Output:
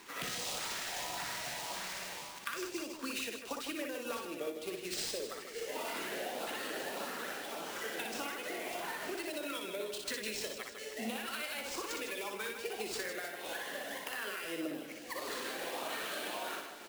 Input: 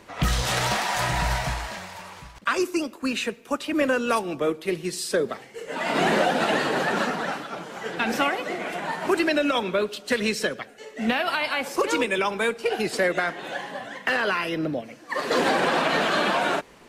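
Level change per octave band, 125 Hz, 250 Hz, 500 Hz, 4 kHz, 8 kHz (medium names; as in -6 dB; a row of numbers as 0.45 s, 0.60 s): -24.5 dB, -16.5 dB, -15.5 dB, -10.5 dB, -6.5 dB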